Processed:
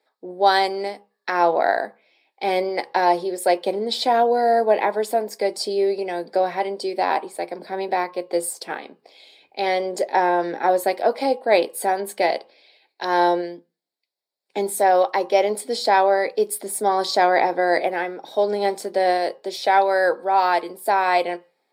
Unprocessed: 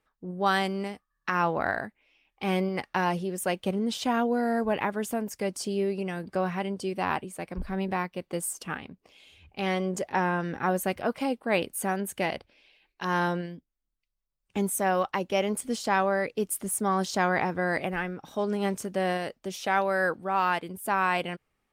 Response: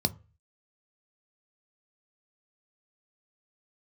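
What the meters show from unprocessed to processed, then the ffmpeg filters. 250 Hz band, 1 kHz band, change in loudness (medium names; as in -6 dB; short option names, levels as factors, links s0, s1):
+0.5 dB, +9.5 dB, +7.5 dB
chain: -filter_complex "[0:a]highpass=f=400:w=0.5412,highpass=f=400:w=1.3066[s0];[1:a]atrim=start_sample=2205,asetrate=41013,aresample=44100[s1];[s0][s1]afir=irnorm=-1:irlink=0"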